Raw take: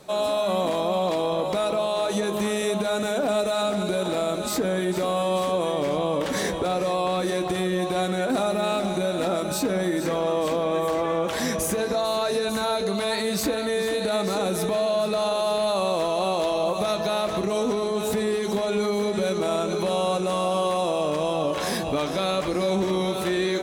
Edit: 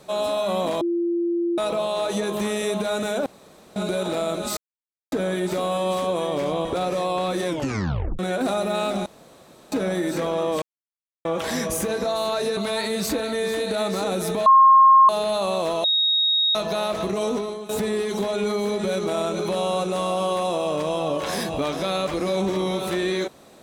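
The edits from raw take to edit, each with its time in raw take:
0.81–1.58 bleep 343 Hz -20 dBFS
3.26–3.76 room tone
4.57 insert silence 0.55 s
6.1–6.54 cut
7.36 tape stop 0.72 s
8.95–9.61 room tone
10.51–11.14 mute
12.46–12.91 cut
14.8–15.43 bleep 1070 Hz -9 dBFS
16.18–16.89 bleep 3760 Hz -17 dBFS
17.65–18.03 fade out, to -14.5 dB

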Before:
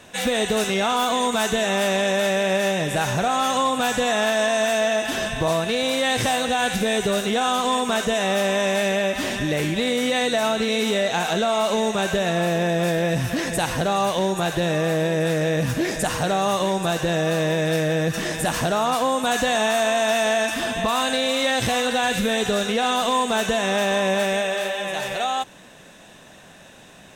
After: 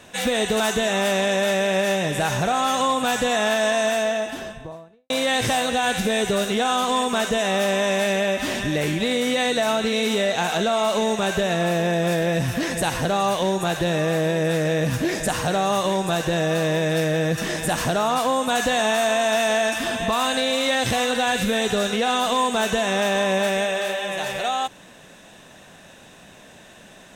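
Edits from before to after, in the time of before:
0.6–1.36 cut
4.51–5.86 studio fade out

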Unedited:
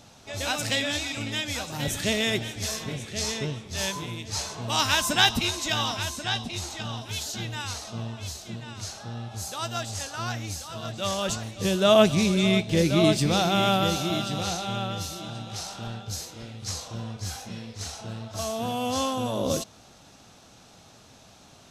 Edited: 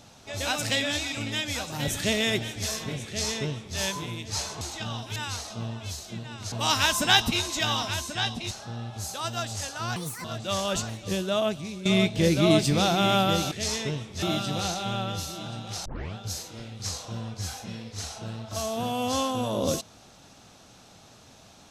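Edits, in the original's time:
3.07–3.78 copy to 14.05
4.61–6.6 move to 8.89
7.15–7.53 cut
10.34–10.78 speed 155%
11.48–12.39 fade out quadratic, to -15 dB
15.68 tape start 0.30 s

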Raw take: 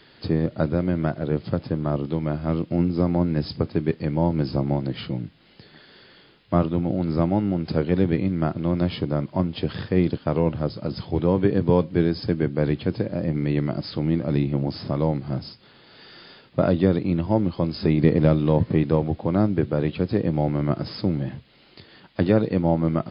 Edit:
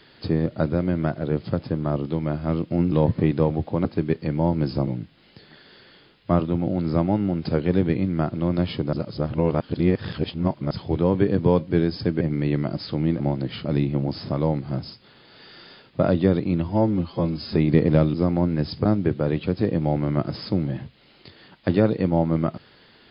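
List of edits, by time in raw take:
2.92–3.63 swap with 18.44–19.37
4.65–5.1 move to 14.24
9.16–10.94 reverse
12.44–13.25 cut
17.24–17.82 stretch 1.5×

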